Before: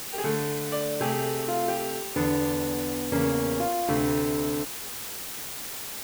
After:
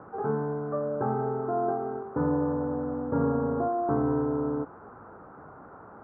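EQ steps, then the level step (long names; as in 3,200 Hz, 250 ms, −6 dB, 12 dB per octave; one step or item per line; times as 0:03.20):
high-pass filter 70 Hz
Chebyshev low-pass filter 1,400 Hz, order 5
0.0 dB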